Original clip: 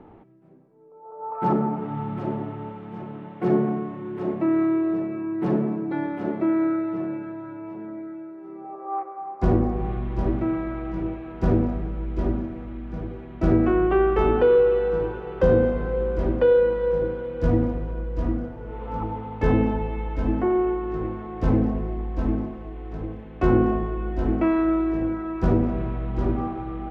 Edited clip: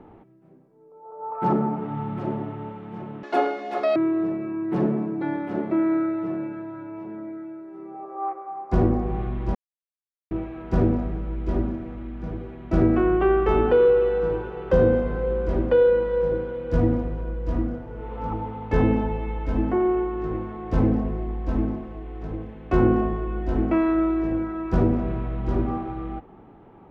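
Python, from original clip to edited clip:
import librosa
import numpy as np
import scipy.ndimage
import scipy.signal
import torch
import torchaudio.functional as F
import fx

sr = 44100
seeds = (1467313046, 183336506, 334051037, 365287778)

y = fx.edit(x, sr, fx.speed_span(start_s=3.23, length_s=1.43, speed=1.96),
    fx.silence(start_s=10.25, length_s=0.76), tone=tone)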